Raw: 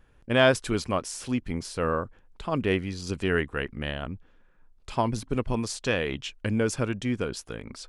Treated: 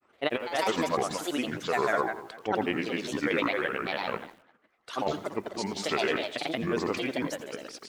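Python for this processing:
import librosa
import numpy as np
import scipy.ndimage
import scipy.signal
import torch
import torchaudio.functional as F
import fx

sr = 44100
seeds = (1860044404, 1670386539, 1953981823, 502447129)

p1 = fx.spec_quant(x, sr, step_db=15)
p2 = scipy.signal.sosfilt(scipy.signal.butter(2, 370.0, 'highpass', fs=sr, output='sos'), p1)
p3 = fx.echo_feedback(p2, sr, ms=155, feedback_pct=26, wet_db=-6.5)
p4 = fx.granulator(p3, sr, seeds[0], grain_ms=100.0, per_s=20.0, spray_ms=100.0, spread_st=7)
p5 = fx.level_steps(p4, sr, step_db=14)
p6 = p4 + F.gain(torch.from_numpy(p5), -1.5).numpy()
p7 = fx.high_shelf(p6, sr, hz=5700.0, db=-8.5)
p8 = fx.over_compress(p7, sr, threshold_db=-25.0, ratio=-0.5)
y = fx.echo_crushed(p8, sr, ms=85, feedback_pct=35, bits=8, wet_db=-14.5)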